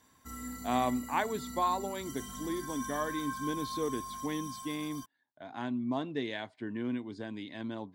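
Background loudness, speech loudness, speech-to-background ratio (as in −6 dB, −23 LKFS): −42.0 LKFS, −36.0 LKFS, 6.0 dB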